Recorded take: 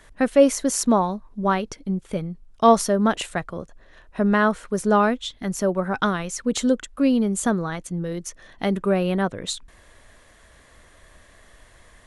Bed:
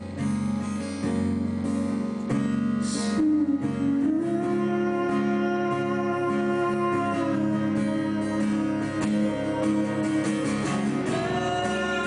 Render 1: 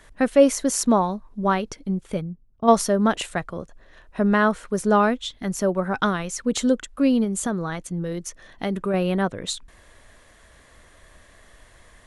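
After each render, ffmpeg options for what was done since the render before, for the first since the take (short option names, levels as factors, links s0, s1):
-filter_complex "[0:a]asplit=3[s0][s1][s2];[s0]afade=t=out:st=2.2:d=0.02[s3];[s1]bandpass=f=110:t=q:w=0.51,afade=t=in:st=2.2:d=0.02,afade=t=out:st=2.67:d=0.02[s4];[s2]afade=t=in:st=2.67:d=0.02[s5];[s3][s4][s5]amix=inputs=3:normalize=0,asettb=1/sr,asplit=3[s6][s7][s8];[s6]atrim=end=7.244[s9];[s7]atrim=start=7.24:end=8.94,asetpts=PTS-STARTPTS,afade=t=in:d=0.004:c=qsin,afade=t=out:st=1.696:d=0.004:c=qsin,acompressor=threshold=0.0708:ratio=2:attack=3.2:release=140:knee=1:detection=peak[s10];[s8]atrim=start=8.936[s11];[s9][s10]acrossfade=d=0.004:c1=hsin:c2=qsin[s12];[s12][s11]acrossfade=d=0.004:c1=qsin:c2=hsin"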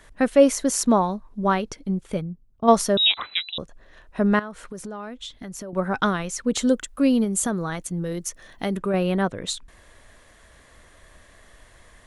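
-filter_complex "[0:a]asettb=1/sr,asplit=3[s0][s1][s2];[s0]atrim=end=2.974[s3];[s1]atrim=start=2.97:end=3.58,asetpts=PTS-STARTPTS,afade=t=in:d=0.004:c=qsin,afade=t=out:st=0.606:d=0.004:c=qsin,lowpass=f=3400:t=q:w=0.5098,lowpass=f=3400:t=q:w=0.6013,lowpass=f=3400:t=q:w=0.9,lowpass=f=3400:t=q:w=2.563,afreqshift=-4000[s4];[s2]atrim=start=3.576[s5];[s3][s4]acrossfade=d=0.004:c1=hsin:c2=qsin[s6];[s6][s5]acrossfade=d=0.004:c1=qsin:c2=hsin,asettb=1/sr,asplit=3[s7][s8][s9];[s7]atrim=end=4.394[s10];[s8]atrim=start=4.39:end=5.73,asetpts=PTS-STARTPTS,afade=t=in:d=0.004:c=qsin,afade=t=out:st=1.336:d=0.004:c=qsin,acompressor=threshold=0.0251:ratio=8:attack=3.2:release=140:knee=1:detection=peak[s11];[s9]atrim=start=5.726[s12];[s10][s11]acrossfade=d=0.004:c1=hsin:c2=qsin[s13];[s13][s12]acrossfade=d=0.004:c1=qsin:c2=hsin,asettb=1/sr,asplit=3[s14][s15][s16];[s14]atrim=end=6.674[s17];[s15]atrim=start=6.67:end=8.77,asetpts=PTS-STARTPTS,afade=t=in:d=0.004:c=qsin,afade=t=out:st=2.096:d=0.004:c=qsin,highshelf=f=9900:g=12[s18];[s16]atrim=start=8.766[s19];[s17][s18]acrossfade=d=0.004:c1=hsin:c2=qsin[s20];[s20][s19]acrossfade=d=0.004:c1=qsin:c2=hsin"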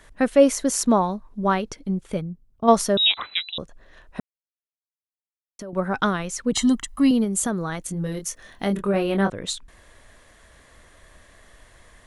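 -filter_complex "[0:a]asettb=1/sr,asplit=3[s0][s1][s2];[s0]atrim=end=6.524[s3];[s1]atrim=start=6.52:end=7.11,asetpts=PTS-STARTPTS,afade=t=in:d=0.004:c=qsin,afade=t=out:st=0.586:d=0.004:c=qsin,aecho=1:1:1:0.91,atrim=end_sample=26019[s4];[s2]atrim=start=7.106[s5];[s3][s4]acrossfade=d=0.004:c1=hsin:c2=qsin[s6];[s6][s5]acrossfade=d=0.004:c1=qsin:c2=hsin,asettb=1/sr,asplit=3[s7][s8][s9];[s7]atrim=end=7.834[s10];[s8]atrim=start=7.83:end=9.3,asetpts=PTS-STARTPTS,afade=t=in:d=0.004:c=qsin,afade=t=out:st=1.466:d=0.004:c=qsin,asplit=2[s11][s12];[s12]adelay=25,volume=0.562[s13];[s11][s13]amix=inputs=2:normalize=0,atrim=end_sample=64827[s14];[s9]atrim=start=9.296[s15];[s10][s14]acrossfade=d=0.004:c1=hsin:c2=qsin[s16];[s16][s15]acrossfade=d=0.004:c1=qsin:c2=hsin,asplit=3[s17][s18][s19];[s17]atrim=end=4.2,asetpts=PTS-STARTPTS,afade=t=out:st=4.196:d=0.004:c=hsin[s20];[s18]atrim=start=4.2:end=5.59,asetpts=PTS-STARTPTS,volume=0[s21];[s19]atrim=start=5.59,asetpts=PTS-STARTPTS,afade=t=in:d=0.004:c=hsin[s22];[s20][s21][s22]concat=n=3:v=0:a=1"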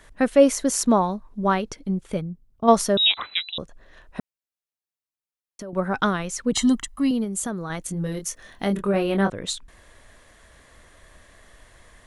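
-filter_complex "[0:a]asplit=3[s0][s1][s2];[s0]atrim=end=6.882[s3];[s1]atrim=start=6.878:end=7.702,asetpts=PTS-STARTPTS,volume=0.631[s4];[s2]atrim=start=7.698[s5];[s3][s4]acrossfade=d=0.004:c1=hsin:c2=hsin[s6];[s6][s5]acrossfade=d=0.004:c1=hsin:c2=hsin"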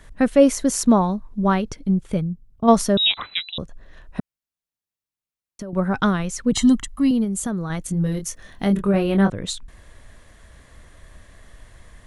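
-af "bass=f=250:g=8,treble=f=4000:g=0"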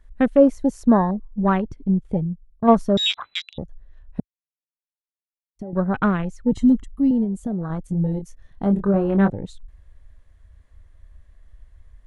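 -af "highshelf=f=3600:g=-5.5,afwtdn=0.0316"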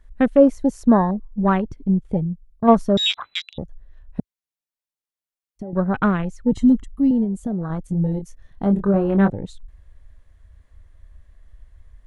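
-af "volume=1.12"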